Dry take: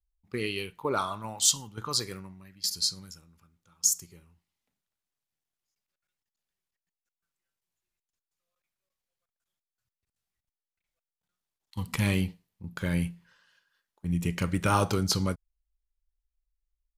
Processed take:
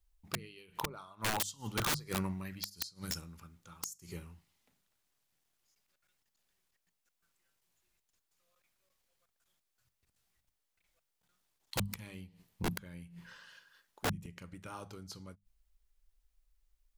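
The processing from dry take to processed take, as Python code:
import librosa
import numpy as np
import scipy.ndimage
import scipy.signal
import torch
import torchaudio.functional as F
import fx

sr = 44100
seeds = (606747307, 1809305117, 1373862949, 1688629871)

y = fx.gate_flip(x, sr, shuts_db=-22.0, range_db=-30)
y = fx.hum_notches(y, sr, base_hz=50, count=4)
y = (np.mod(10.0 ** (35.0 / 20.0) * y + 1.0, 2.0) - 1.0) / 10.0 ** (35.0 / 20.0)
y = y * 10.0 ** (9.0 / 20.0)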